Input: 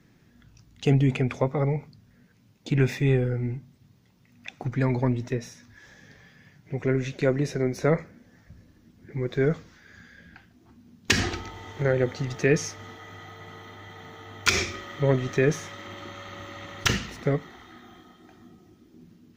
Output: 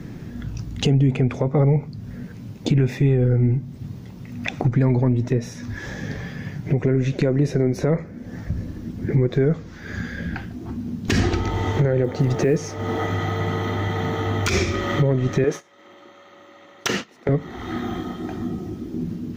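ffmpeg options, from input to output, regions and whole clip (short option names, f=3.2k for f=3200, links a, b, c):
-filter_complex "[0:a]asettb=1/sr,asplit=3[a][b][c];[a]atrim=end=12.044[d];[b]atrim=start=12.04:end=13.07,asetpts=PTS-STARTPTS,afade=t=in:d=0.004:c=qsin,afade=t=out:st=1.026:d=0.004:c=qsin,equalizer=f=540:t=o:w=2.3:g=6,acrusher=bits=8:mode=log:mix=0:aa=0.000001[e];[c]atrim=start=13.066[f];[d][e]acrossfade=d=0.004:c1=hsin:c2=qsin[g];[g][f]acrossfade=d=0.004:c1=qsin:c2=hsin,asettb=1/sr,asplit=3[h][i][j];[h]atrim=end=15.444[k];[i]atrim=start=15.44:end=17.29,asetpts=PTS-STARTPTS,afade=t=in:d=0.004:c=qsin,afade=t=out:st=1.846:d=0.004:c=qsin,highpass=360,agate=range=-24dB:threshold=-37dB:ratio=16:release=100:detection=peak[l];[j]atrim=start=17.286[m];[k][l]acrossfade=d=0.004:c1=hsin:c2=qsin[n];[n][m]acrossfade=d=0.004:c1=qsin:c2=hsin,tiltshelf=f=780:g=5.5,acompressor=threshold=-39dB:ratio=3,alimiter=level_in=28dB:limit=-1dB:release=50:level=0:latency=1,volume=-8.5dB"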